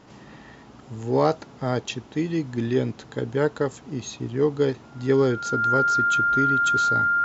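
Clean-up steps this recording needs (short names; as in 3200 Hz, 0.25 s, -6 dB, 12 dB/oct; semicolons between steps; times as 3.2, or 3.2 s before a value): notch 1400 Hz, Q 30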